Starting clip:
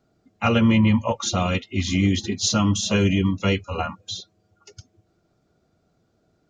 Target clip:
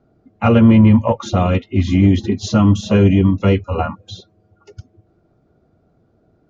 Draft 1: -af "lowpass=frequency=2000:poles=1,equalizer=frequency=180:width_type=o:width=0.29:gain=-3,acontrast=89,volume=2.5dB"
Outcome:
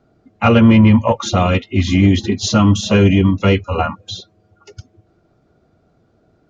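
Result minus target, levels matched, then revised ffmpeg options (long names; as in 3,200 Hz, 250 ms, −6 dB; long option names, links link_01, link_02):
2,000 Hz band +5.0 dB
-af "lowpass=frequency=760:poles=1,equalizer=frequency=180:width_type=o:width=0.29:gain=-3,acontrast=89,volume=2.5dB"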